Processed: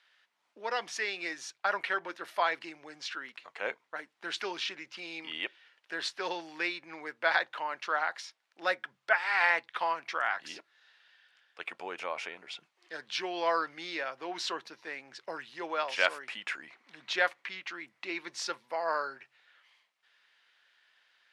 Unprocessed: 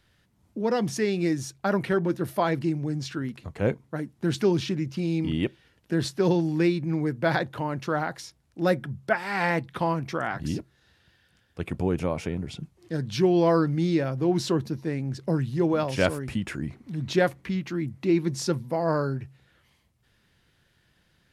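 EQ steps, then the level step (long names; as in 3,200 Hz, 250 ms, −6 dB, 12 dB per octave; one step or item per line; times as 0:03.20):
band-pass filter 730–2,700 Hz
spectral tilt +4 dB per octave
0.0 dB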